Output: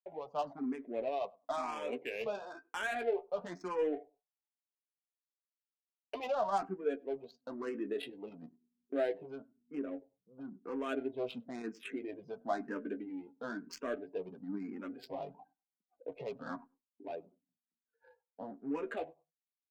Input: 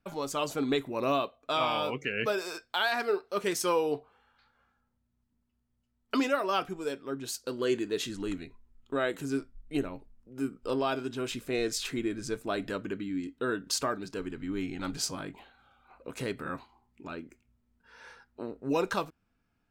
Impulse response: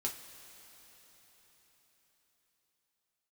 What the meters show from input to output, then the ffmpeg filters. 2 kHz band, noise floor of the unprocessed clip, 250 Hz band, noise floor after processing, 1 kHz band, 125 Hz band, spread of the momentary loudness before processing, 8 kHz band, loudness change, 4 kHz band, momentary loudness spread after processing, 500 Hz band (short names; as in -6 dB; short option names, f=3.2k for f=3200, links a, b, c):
-9.5 dB, -77 dBFS, -7.5 dB, under -85 dBFS, -6.5 dB, -14.0 dB, 14 LU, under -20 dB, -7.5 dB, -16.5 dB, 13 LU, -5.5 dB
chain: -filter_complex "[0:a]aemphasis=mode=reproduction:type=bsi,afftdn=nr=25:nf=-45,agate=range=-13dB:threshold=-57dB:ratio=16:detection=peak,alimiter=limit=-23dB:level=0:latency=1:release=35,dynaudnorm=f=730:g=5:m=5dB,flanger=delay=5.3:depth=9.4:regen=26:speed=0.19:shape=triangular,highpass=f=250:w=0.5412,highpass=f=250:w=1.3066,equalizer=f=340:t=q:w=4:g=-8,equalizer=f=720:t=q:w=4:g=8,equalizer=f=1.3k:t=q:w=4:g=-7,lowpass=f=7.7k:w=0.5412,lowpass=f=7.7k:w=1.3066,adynamicsmooth=sensitivity=7.5:basefreq=1.1k,asplit=2[a][b];[b]adelay=99,lowpass=f=890:p=1,volume=-23.5dB,asplit=2[c][d];[d]adelay=99,lowpass=f=890:p=1,volume=0.19[e];[a][c][e]amix=inputs=3:normalize=0,asplit=2[f][g];[g]afreqshift=1[h];[f][h]amix=inputs=2:normalize=1,volume=-1dB"